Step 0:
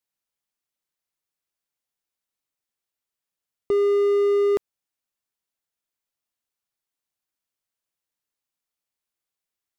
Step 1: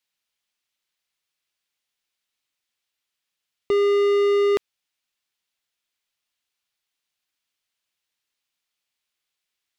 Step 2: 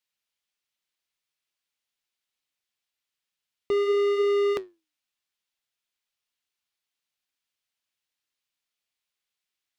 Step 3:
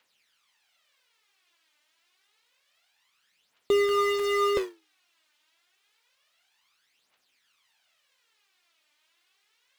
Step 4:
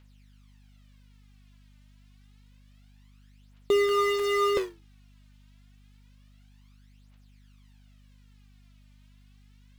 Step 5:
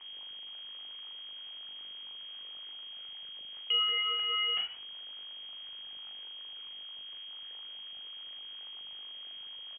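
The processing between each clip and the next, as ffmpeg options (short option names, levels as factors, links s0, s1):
-af "equalizer=f=3100:w=0.57:g=11"
-af "flanger=delay=7.1:depth=5.8:regen=-77:speed=0.69:shape=triangular"
-filter_complex "[0:a]acrusher=bits=4:mode=log:mix=0:aa=0.000001,asplit=2[s0][s1];[s1]highpass=f=720:p=1,volume=28.2,asoftclip=type=tanh:threshold=0.2[s2];[s0][s2]amix=inputs=2:normalize=0,lowpass=f=2500:p=1,volume=0.501,aphaser=in_gain=1:out_gain=1:delay=3.4:decay=0.64:speed=0.28:type=triangular,volume=0.631"
-af "aeval=exprs='val(0)+0.00178*(sin(2*PI*50*n/s)+sin(2*PI*2*50*n/s)/2+sin(2*PI*3*50*n/s)/3+sin(2*PI*4*50*n/s)/4+sin(2*PI*5*50*n/s)/5)':c=same"
-filter_complex "[0:a]aeval=exprs='val(0)+0.5*0.0158*sgn(val(0))':c=same,asplit=2[s0][s1];[s1]adelay=40,volume=0.447[s2];[s0][s2]amix=inputs=2:normalize=0,lowpass=f=2800:t=q:w=0.5098,lowpass=f=2800:t=q:w=0.6013,lowpass=f=2800:t=q:w=0.9,lowpass=f=2800:t=q:w=2.563,afreqshift=-3300,volume=0.398"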